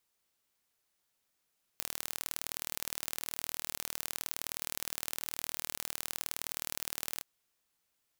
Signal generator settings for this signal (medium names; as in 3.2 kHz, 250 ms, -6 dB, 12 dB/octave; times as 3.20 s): pulse train 39 per s, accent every 2, -7.5 dBFS 5.42 s